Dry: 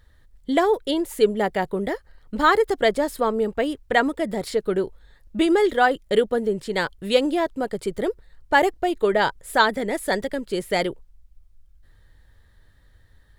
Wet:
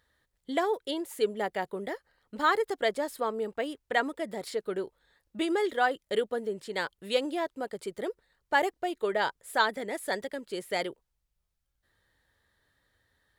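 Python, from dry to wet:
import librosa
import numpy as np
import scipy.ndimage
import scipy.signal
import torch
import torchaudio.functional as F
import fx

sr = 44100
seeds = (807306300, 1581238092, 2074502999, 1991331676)

y = fx.highpass(x, sr, hz=370.0, slope=6)
y = y * 10.0 ** (-7.0 / 20.0)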